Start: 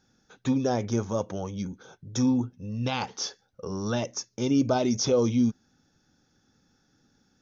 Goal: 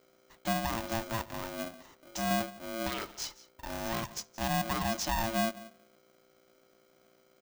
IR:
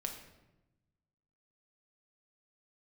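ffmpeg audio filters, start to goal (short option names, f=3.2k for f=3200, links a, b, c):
-filter_complex "[0:a]asettb=1/sr,asplit=3[a][b][c];[a]atrim=end=1.684[d];[b]atrim=start=1.68:end=2.31,asetpts=PTS-STARTPTS,afade=t=in:d=0.004:c=qsin,afade=t=out:st=0.626:d=0.004:c=qsin,lowshelf=f=270:g=-8.5[e];[c]atrim=start=2.306[f];[d][e]acrossfade=d=0.004:c1=hsin:c2=qsin[g];[g][f]acrossfade=d=0.004:c1=qsin:c2=hsin,aecho=1:1:174:0.106,alimiter=limit=-17dB:level=0:latency=1:release=232,asplit=2[h][i];[1:a]atrim=start_sample=2205,asetrate=83790,aresample=44100[j];[i][j]afir=irnorm=-1:irlink=0,volume=-8.5dB[k];[h][k]amix=inputs=2:normalize=0,aeval=exprs='val(0)+0.00126*(sin(2*PI*60*n/s)+sin(2*PI*2*60*n/s)/2+sin(2*PI*3*60*n/s)/3+sin(2*PI*4*60*n/s)/4+sin(2*PI*5*60*n/s)/5)':c=same,aeval=exprs='val(0)*sgn(sin(2*PI*450*n/s))':c=same,volume=-7dB"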